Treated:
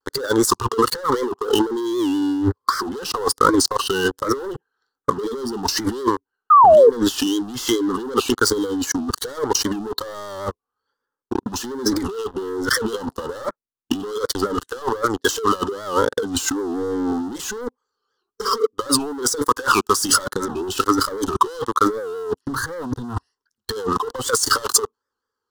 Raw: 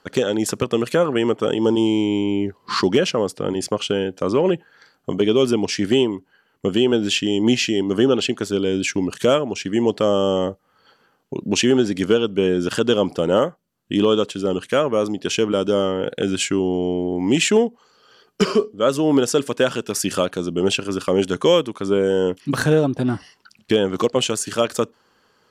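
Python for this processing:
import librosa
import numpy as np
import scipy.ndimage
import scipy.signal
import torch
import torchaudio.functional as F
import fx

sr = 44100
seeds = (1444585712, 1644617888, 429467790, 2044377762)

y = fx.noise_reduce_blind(x, sr, reduce_db=15)
y = fx.peak_eq(y, sr, hz=320.0, db=-7.0, octaves=0.28)
y = fx.leveller(y, sr, passes=5)
y = fx.over_compress(y, sr, threshold_db=-16.0, ratio=-0.5)
y = fx.fixed_phaser(y, sr, hz=640.0, stages=6)
y = fx.vibrato(y, sr, rate_hz=1.2, depth_cents=87.0)
y = fx.spec_paint(y, sr, seeds[0], shape='fall', start_s=6.5, length_s=0.4, low_hz=430.0, high_hz=1300.0, level_db=-8.0)
y = fx.record_warp(y, sr, rpm=78.0, depth_cents=160.0)
y = y * 10.0 ** (-1.0 / 20.0)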